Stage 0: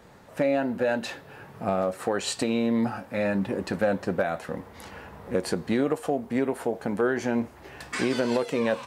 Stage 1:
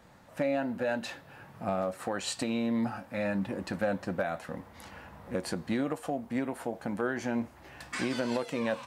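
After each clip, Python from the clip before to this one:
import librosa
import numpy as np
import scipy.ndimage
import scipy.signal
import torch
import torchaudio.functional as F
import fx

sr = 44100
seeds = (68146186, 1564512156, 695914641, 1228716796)

y = fx.peak_eq(x, sr, hz=420.0, db=-10.5, octaves=0.27)
y = y * librosa.db_to_amplitude(-4.5)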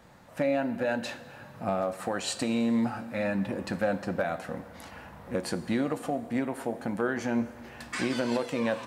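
y = fx.rev_plate(x, sr, seeds[0], rt60_s=2.0, hf_ratio=0.85, predelay_ms=0, drr_db=13.0)
y = y * librosa.db_to_amplitude(2.0)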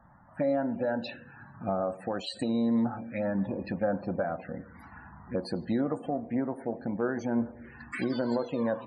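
y = fx.spec_topn(x, sr, count=64)
y = fx.env_phaser(y, sr, low_hz=410.0, high_hz=2600.0, full_db=-25.5)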